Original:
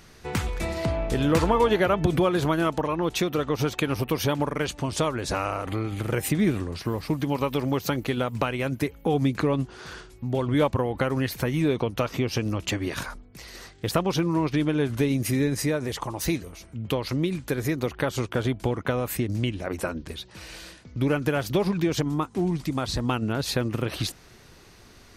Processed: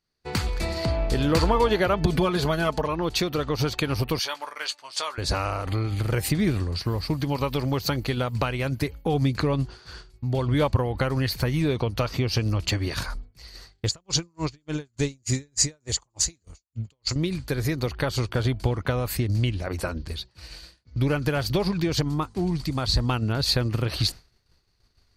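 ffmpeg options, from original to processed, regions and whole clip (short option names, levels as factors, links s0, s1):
-filter_complex "[0:a]asettb=1/sr,asplit=3[s0][s1][s2];[s0]atrim=end=2.034[s3];[s1]atrim=start=2.03:end=2.86,asetpts=PTS-STARTPTS,afade=t=in:d=0.004:c=qsin,afade=t=out:st=0.826:d=0.004:c=qsin,bandreject=f=1300:w=24,aecho=1:1:4.7:0.54,atrim=end_sample=36603[s4];[s2]atrim=start=2.856[s5];[s3][s4]acrossfade=d=0.004:c1=hsin:c2=qsin[s6];[s6][s5]acrossfade=d=0.004:c1=qsin:c2=hsin,asettb=1/sr,asplit=3[s7][s8][s9];[s7]atrim=end=4.194[s10];[s8]atrim=start=4.19:end=5.18,asetpts=PTS-STARTPTS,afade=t=in:d=0.004:c=qsin,afade=t=out:st=0.986:d=0.004:c=qsin,acrossover=split=9800[s11][s12];[s12]acompressor=threshold=0.00316:ratio=4:attack=1:release=60[s13];[s11][s13]amix=inputs=2:normalize=0,highpass=1000,asplit=2[s14][s15];[s15]adelay=17,volume=0.335[s16];[s14][s16]amix=inputs=2:normalize=0,atrim=end_sample=43659[s17];[s9]atrim=start=5.176[s18];[s10][s17]acrossfade=d=0.004:c1=hsin:c2=qsin[s19];[s19][s18]acrossfade=d=0.004:c1=qsin:c2=hsin,asettb=1/sr,asplit=3[s20][s21][s22];[s20]atrim=end=13.864[s23];[s21]atrim=start=13.86:end=17.16,asetpts=PTS-STARTPTS,afade=t=in:d=0.004:c=qsin,afade=t=out:st=3.296:d=0.004:c=qsin,lowpass=f=7100:t=q:w=15,aeval=exprs='val(0)*pow(10,-34*(0.5-0.5*cos(2*PI*3.4*n/s))/20)':c=same[s24];[s22]atrim=start=17.156[s25];[s23][s24]acrossfade=d=0.004:c1=hsin:c2=qsin[s26];[s26][s25]acrossfade=d=0.004:c1=qsin:c2=hsin,asubboost=boost=3:cutoff=120,agate=range=0.0224:threshold=0.0251:ratio=3:detection=peak,equalizer=f=4500:t=o:w=0.25:g=12.5"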